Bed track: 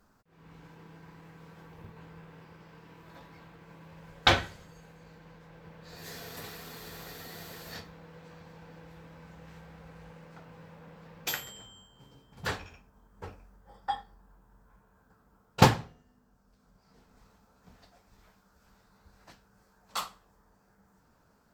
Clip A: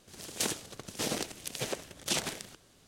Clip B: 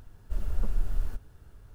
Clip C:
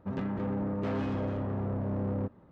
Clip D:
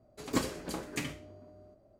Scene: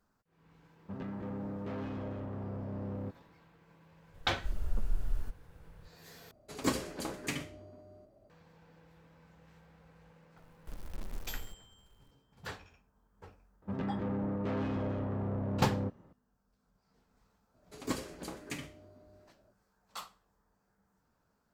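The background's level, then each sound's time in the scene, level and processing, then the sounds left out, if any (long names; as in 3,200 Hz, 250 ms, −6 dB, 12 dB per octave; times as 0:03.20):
bed track −10 dB
0:00.83: mix in C −7.5 dB
0:04.14: mix in B −4.5 dB
0:06.31: overwrite with D + mains-hum notches 60/120/180/240/300/360/420/480 Hz
0:10.37: mix in B −15 dB + one scale factor per block 3 bits
0:13.62: mix in C −2.5 dB
0:17.54: mix in D −5 dB
not used: A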